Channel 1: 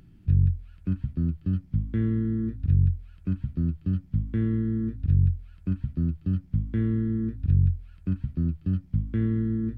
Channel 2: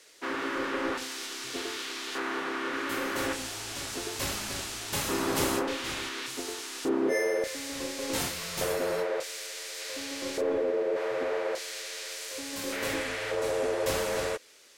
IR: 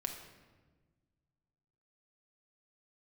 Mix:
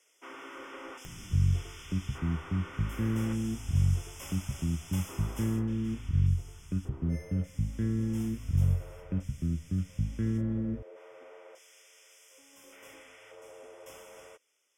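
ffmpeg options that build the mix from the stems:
-filter_complex "[0:a]acompressor=mode=upward:threshold=0.0316:ratio=2.5,adelay=1050,volume=0.531,asplit=2[s0][s1];[s1]volume=0.0891[s2];[1:a]lowshelf=f=390:g=-8,bandreject=f=1700:w=6.2,volume=0.299,afade=t=out:st=4.9:d=0.78:silence=0.421697[s3];[2:a]atrim=start_sample=2205[s4];[s2][s4]afir=irnorm=-1:irlink=0[s5];[s0][s3][s5]amix=inputs=3:normalize=0,asuperstop=centerf=4200:order=20:qfactor=2.9"

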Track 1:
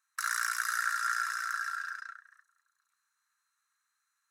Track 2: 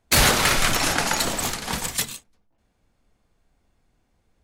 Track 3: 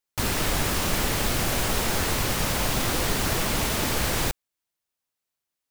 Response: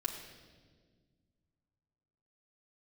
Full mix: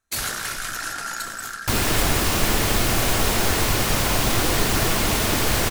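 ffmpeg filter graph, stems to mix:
-filter_complex "[0:a]asoftclip=type=hard:threshold=0.0708,volume=1[s0];[1:a]highshelf=f=4400:g=9.5,volume=0.133,asplit=2[s1][s2];[s2]volume=0.376[s3];[2:a]adelay=1500,volume=1.26,asplit=2[s4][s5];[s5]volume=0.355[s6];[3:a]atrim=start_sample=2205[s7];[s3][s6]amix=inputs=2:normalize=0[s8];[s8][s7]afir=irnorm=-1:irlink=0[s9];[s0][s1][s4][s9]amix=inputs=4:normalize=0"

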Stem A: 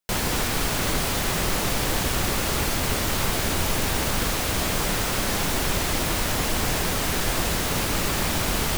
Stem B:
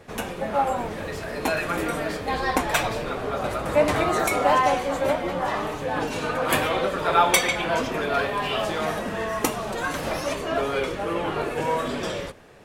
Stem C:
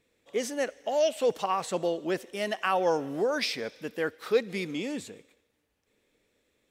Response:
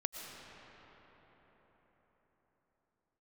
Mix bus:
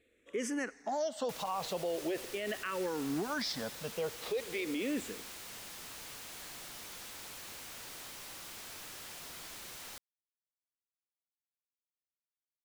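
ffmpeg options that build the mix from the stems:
-filter_complex "[0:a]highshelf=f=4000:g=6.5,aeval=exprs='0.0355*(abs(mod(val(0)/0.0355+3,4)-2)-1)':c=same,adelay=1200,volume=0.316[s0];[2:a]acompressor=threshold=0.0447:ratio=6,asplit=2[s1][s2];[s2]afreqshift=-0.42[s3];[s1][s3]amix=inputs=2:normalize=1,volume=1.33[s4];[s0][s4]amix=inputs=2:normalize=0,highshelf=f=8200:g=-7.5,alimiter=level_in=1.41:limit=0.0631:level=0:latency=1:release=37,volume=0.708"

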